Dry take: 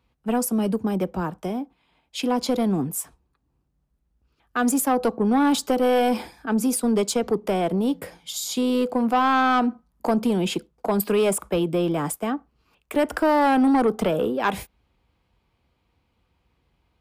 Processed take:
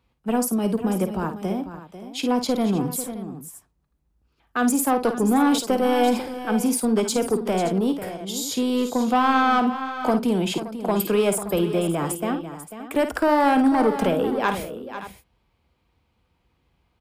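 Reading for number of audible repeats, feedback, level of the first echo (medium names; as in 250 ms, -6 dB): 3, no regular repeats, -9.5 dB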